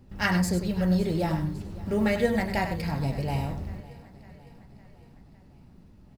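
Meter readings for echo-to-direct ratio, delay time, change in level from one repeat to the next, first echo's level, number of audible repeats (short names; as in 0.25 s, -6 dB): -8.5 dB, 99 ms, no steady repeat, -9.0 dB, 7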